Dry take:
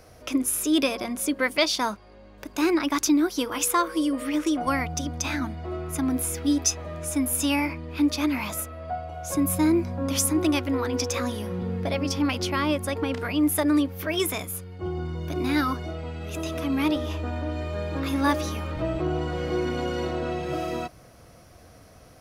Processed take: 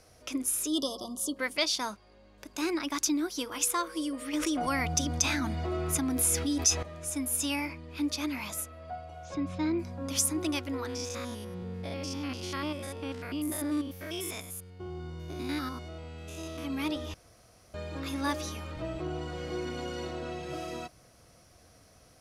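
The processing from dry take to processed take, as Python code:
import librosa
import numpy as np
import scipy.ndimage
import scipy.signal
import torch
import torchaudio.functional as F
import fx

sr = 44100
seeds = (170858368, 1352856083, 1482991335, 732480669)

y = fx.spec_erase(x, sr, start_s=0.68, length_s=0.68, low_hz=1300.0, high_hz=2900.0)
y = fx.env_flatten(y, sr, amount_pct=70, at=(4.33, 6.83))
y = fx.lowpass(y, sr, hz=4400.0, slope=24, at=(9.23, 9.78), fade=0.02)
y = fx.spec_steps(y, sr, hold_ms=100, at=(10.87, 16.63), fade=0.02)
y = fx.edit(y, sr, fx.room_tone_fill(start_s=17.14, length_s=0.6), tone=tone)
y = scipy.signal.sosfilt(scipy.signal.bessel(2, 8400.0, 'lowpass', norm='mag', fs=sr, output='sos'), y)
y = fx.high_shelf(y, sr, hz=4200.0, db=12.0)
y = y * 10.0 ** (-9.0 / 20.0)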